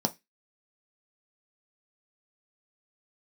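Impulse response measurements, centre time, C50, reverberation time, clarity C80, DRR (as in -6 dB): 5 ms, 22.0 dB, 0.15 s, 32.0 dB, 5.0 dB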